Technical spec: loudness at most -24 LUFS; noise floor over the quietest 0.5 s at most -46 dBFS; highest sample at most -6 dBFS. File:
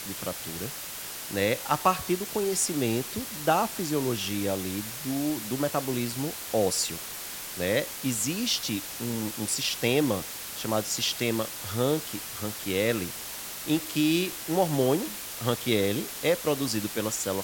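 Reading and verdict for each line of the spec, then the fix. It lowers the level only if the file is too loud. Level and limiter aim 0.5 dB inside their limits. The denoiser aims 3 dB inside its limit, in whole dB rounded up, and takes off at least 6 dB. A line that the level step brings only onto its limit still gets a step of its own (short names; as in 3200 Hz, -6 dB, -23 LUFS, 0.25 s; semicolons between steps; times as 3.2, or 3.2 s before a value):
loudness -28.0 LUFS: OK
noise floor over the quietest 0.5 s -38 dBFS: fail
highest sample -8.5 dBFS: OK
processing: denoiser 11 dB, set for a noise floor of -38 dBFS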